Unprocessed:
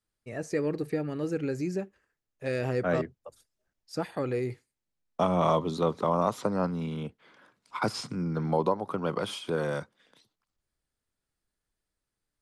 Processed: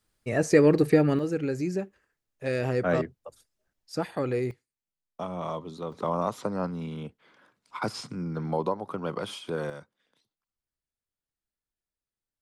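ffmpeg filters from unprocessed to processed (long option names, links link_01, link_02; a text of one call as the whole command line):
ffmpeg -i in.wav -af "asetnsamples=nb_out_samples=441:pad=0,asendcmd='1.19 volume volume 2dB;4.51 volume volume -9dB;5.92 volume volume -2dB;9.7 volume volume -10dB',volume=10.5dB" out.wav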